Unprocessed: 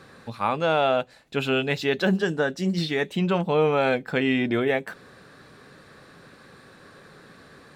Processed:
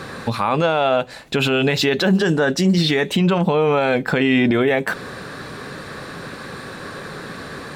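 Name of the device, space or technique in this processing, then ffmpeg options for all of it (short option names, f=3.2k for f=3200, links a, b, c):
mastering chain: -af "equalizer=f=1k:t=o:w=0.29:g=2,acompressor=threshold=-29dB:ratio=1.5,alimiter=level_in=24.5dB:limit=-1dB:release=50:level=0:latency=1,volume=-8dB"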